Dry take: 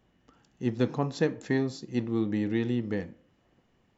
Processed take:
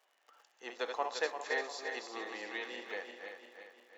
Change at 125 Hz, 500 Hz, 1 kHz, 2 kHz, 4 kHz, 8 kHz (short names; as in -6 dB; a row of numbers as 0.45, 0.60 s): under -40 dB, -8.0 dB, +1.5 dB, +1.5 dB, +1.0 dB, n/a